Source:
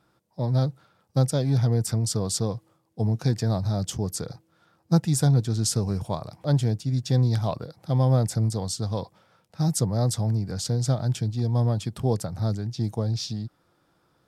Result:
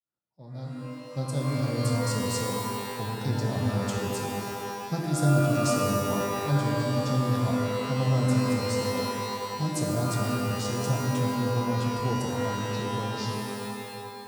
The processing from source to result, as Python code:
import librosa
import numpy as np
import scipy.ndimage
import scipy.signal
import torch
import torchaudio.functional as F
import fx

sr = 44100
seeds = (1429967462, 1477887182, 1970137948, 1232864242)

y = fx.fade_in_head(x, sr, length_s=1.75)
y = fx.rev_shimmer(y, sr, seeds[0], rt60_s=2.3, semitones=12, shimmer_db=-2, drr_db=0.0)
y = y * 10.0 ** (-8.0 / 20.0)